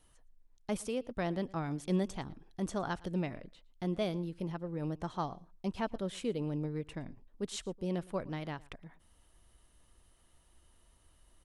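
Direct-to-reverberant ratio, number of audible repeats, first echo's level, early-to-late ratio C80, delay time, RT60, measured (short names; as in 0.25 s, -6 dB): none, 1, -23.0 dB, none, 0.113 s, none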